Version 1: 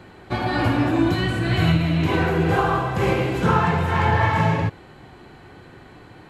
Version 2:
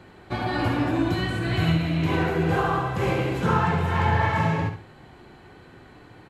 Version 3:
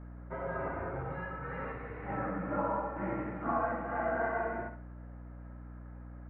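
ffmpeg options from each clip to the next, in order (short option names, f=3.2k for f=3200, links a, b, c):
-af "aecho=1:1:68|136|204:0.355|0.0958|0.0259,volume=-4dB"
-af "highpass=f=420:t=q:w=0.5412,highpass=f=420:t=q:w=1.307,lowpass=f=2k:t=q:w=0.5176,lowpass=f=2k:t=q:w=0.7071,lowpass=f=2k:t=q:w=1.932,afreqshift=-200,aeval=exprs='val(0)+0.0126*(sin(2*PI*60*n/s)+sin(2*PI*2*60*n/s)/2+sin(2*PI*3*60*n/s)/3+sin(2*PI*4*60*n/s)/4+sin(2*PI*5*60*n/s)/5)':c=same,volume=-7.5dB"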